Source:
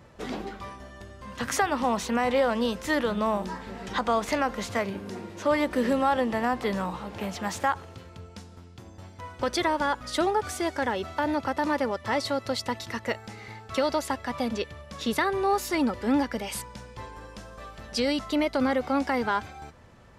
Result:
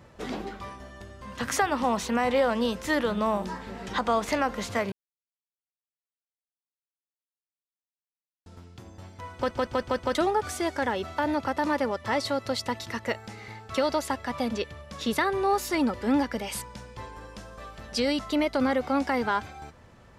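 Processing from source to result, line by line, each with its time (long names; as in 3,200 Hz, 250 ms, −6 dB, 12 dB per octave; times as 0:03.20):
0:04.92–0:08.46: silence
0:09.35: stutter in place 0.16 s, 5 plays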